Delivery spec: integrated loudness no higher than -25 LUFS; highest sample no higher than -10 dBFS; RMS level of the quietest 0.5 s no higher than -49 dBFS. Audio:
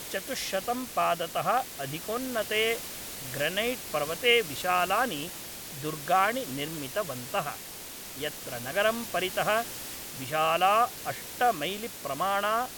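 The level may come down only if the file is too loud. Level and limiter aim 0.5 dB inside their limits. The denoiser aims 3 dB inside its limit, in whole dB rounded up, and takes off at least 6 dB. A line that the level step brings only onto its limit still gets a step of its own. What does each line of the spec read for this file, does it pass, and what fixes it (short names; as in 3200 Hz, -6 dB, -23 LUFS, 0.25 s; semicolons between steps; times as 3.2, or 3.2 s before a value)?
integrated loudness -29.0 LUFS: OK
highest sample -9.0 dBFS: fail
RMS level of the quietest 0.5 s -42 dBFS: fail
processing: denoiser 10 dB, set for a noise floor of -42 dBFS; limiter -10.5 dBFS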